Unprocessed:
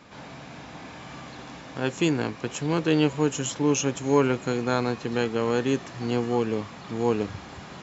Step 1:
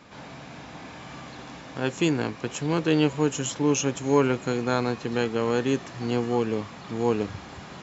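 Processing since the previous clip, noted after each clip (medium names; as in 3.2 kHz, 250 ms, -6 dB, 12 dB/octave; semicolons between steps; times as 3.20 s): no audible change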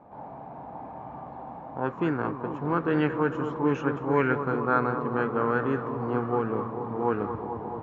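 filtered feedback delay 219 ms, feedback 84%, low-pass 1.9 kHz, level -9.5 dB; touch-sensitive low-pass 780–3100 Hz up, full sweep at -11 dBFS; trim -4 dB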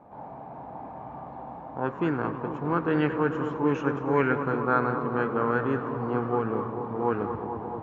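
modulated delay 102 ms, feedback 76%, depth 108 cents, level -17 dB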